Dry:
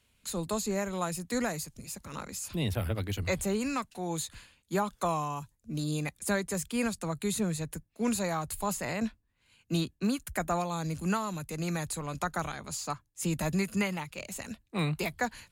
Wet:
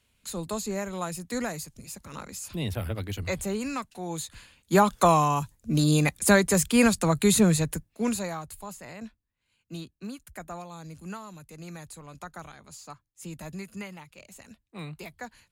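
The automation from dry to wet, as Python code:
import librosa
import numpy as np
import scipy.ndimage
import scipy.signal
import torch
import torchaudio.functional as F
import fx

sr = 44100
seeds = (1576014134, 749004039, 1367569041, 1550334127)

y = fx.gain(x, sr, db=fx.line((4.3, 0.0), (4.81, 10.5), (7.54, 10.5), (8.03, 3.0), (8.69, -9.0)))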